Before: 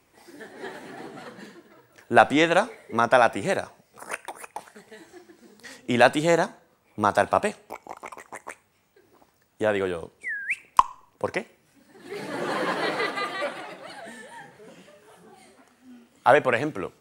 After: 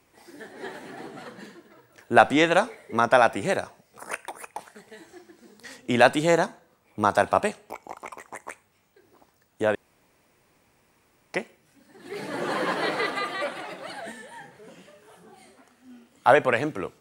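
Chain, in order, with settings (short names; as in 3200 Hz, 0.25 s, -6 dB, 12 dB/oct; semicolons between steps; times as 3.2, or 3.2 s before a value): 9.75–11.34 room tone; 13.11–14.12 three-band squash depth 40%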